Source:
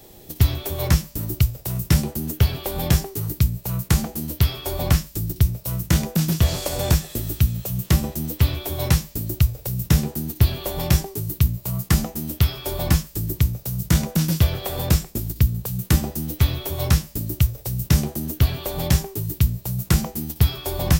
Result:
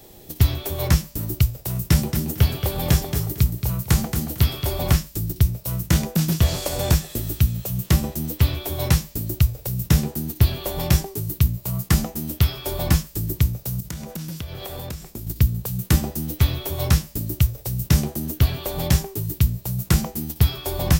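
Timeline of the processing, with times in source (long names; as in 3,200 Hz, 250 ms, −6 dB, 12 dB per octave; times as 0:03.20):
0:01.69–0:04.96: repeating echo 226 ms, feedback 20%, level −8 dB
0:13.80–0:15.27: downward compressor, threshold −29 dBFS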